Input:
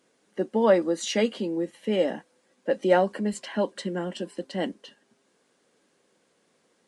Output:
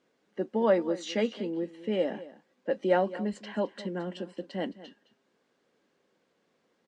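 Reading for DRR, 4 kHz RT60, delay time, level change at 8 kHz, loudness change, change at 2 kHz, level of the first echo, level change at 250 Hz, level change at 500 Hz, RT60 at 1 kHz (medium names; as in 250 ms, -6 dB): no reverb, no reverb, 215 ms, under -10 dB, -4.5 dB, -5.0 dB, -16.5 dB, -4.0 dB, -4.0 dB, no reverb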